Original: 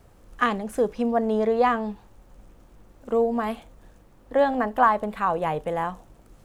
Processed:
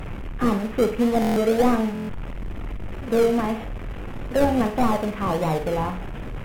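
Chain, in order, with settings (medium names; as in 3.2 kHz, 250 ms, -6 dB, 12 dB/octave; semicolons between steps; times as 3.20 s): one-bit delta coder 16 kbps, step -31.5 dBFS; in parallel at -8.5 dB: decimation with a swept rate 39×, swing 60% 1.6 Hz; on the sum: bass shelf 260 Hz +5 dB; flutter echo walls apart 8.5 m, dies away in 0.35 s; buffer glitch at 1.20/1.93 s, samples 1024, times 6; Vorbis 64 kbps 48 kHz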